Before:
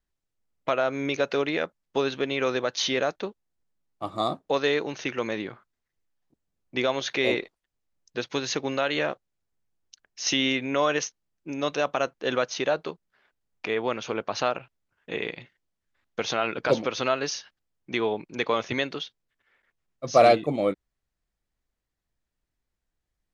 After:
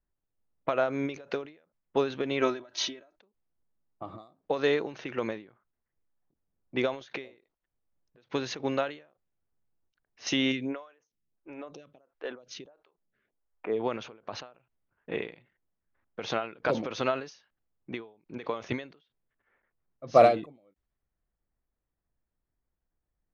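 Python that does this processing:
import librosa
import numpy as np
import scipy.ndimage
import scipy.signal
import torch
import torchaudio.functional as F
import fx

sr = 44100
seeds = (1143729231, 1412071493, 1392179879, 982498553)

y = fx.comb(x, sr, ms=3.1, depth=0.92, at=(2.41, 3.17), fade=0.02)
y = fx.stagger_phaser(y, sr, hz=1.5, at=(10.51, 13.79), fade=0.02)
y = fx.env_lowpass(y, sr, base_hz=1800.0, full_db=-21.0)
y = fx.high_shelf(y, sr, hz=2400.0, db=-8.0)
y = fx.end_taper(y, sr, db_per_s=140.0)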